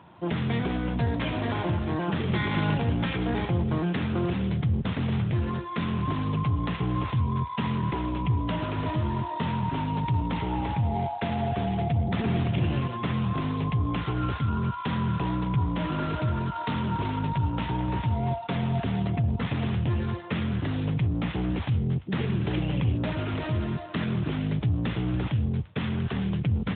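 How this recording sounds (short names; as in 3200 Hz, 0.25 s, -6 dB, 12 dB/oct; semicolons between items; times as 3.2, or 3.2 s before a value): a buzz of ramps at a fixed pitch in blocks of 8 samples; AMR-NB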